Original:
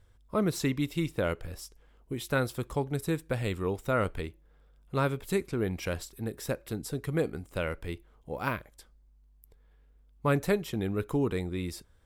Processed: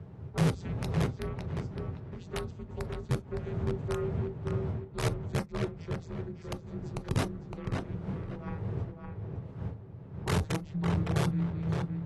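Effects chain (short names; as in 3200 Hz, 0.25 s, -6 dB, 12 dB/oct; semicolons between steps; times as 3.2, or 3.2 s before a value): vocoder on a gliding note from F#3, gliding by -4 st; wind noise 400 Hz -42 dBFS; in parallel at -9.5 dB: soft clip -26 dBFS, distortion -11 dB; on the sum: frequency shift -130 Hz; wrapped overs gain 20 dB; darkening echo 0.562 s, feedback 30%, low-pass 2800 Hz, level -4 dB; on a send at -10.5 dB: reverb, pre-delay 3 ms; on the sum: gain -7 dB; AAC 32 kbps 32000 Hz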